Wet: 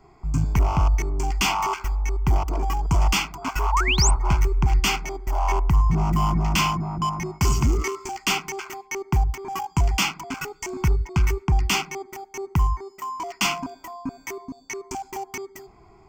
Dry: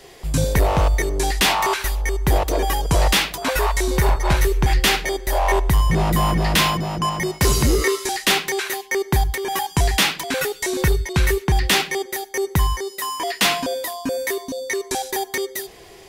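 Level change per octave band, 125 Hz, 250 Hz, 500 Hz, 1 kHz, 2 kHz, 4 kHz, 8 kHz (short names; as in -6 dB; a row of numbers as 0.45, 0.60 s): -1.5, -4.0, -10.5, -3.5, -6.5, -6.5, -5.0 dB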